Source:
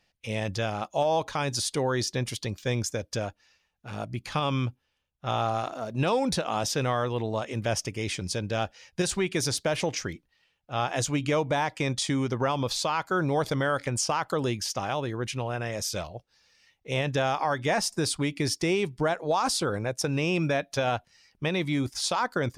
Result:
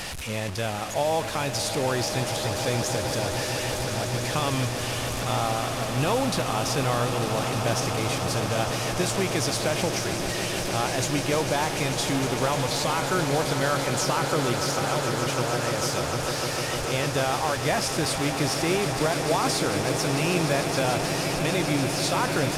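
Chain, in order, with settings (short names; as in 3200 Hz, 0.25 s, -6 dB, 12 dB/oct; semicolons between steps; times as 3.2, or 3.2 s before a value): delta modulation 64 kbps, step -28 dBFS; on a send: swelling echo 0.15 s, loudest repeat 8, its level -12 dB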